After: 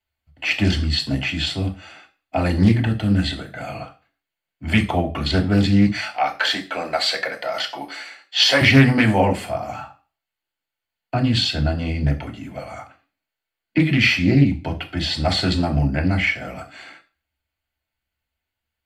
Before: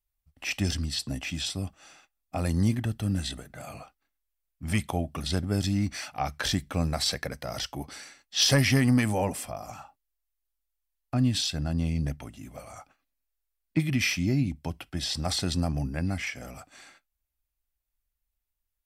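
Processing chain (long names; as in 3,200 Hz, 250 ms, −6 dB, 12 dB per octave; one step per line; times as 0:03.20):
0:05.86–0:08.61: high-pass filter 480 Hz 12 dB per octave
convolution reverb RT60 0.35 s, pre-delay 3 ms, DRR −0.5 dB
highs frequency-modulated by the lows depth 0.22 ms
level −1.5 dB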